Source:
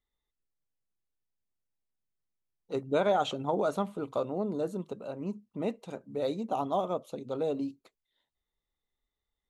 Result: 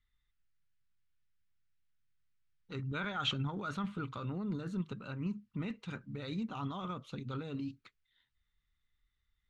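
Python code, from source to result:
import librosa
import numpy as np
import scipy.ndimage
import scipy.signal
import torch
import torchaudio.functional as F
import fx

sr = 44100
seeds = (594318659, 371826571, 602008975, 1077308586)

p1 = scipy.signal.sosfilt(scipy.signal.bessel(2, 2800.0, 'lowpass', norm='mag', fs=sr, output='sos'), x)
p2 = fx.over_compress(p1, sr, threshold_db=-34.0, ratio=-0.5)
p3 = p1 + (p2 * 10.0 ** (0.0 / 20.0))
p4 = fx.curve_eq(p3, sr, hz=(120.0, 660.0, 1400.0), db=(0, -25, -1))
y = p4 * 10.0 ** (1.0 / 20.0)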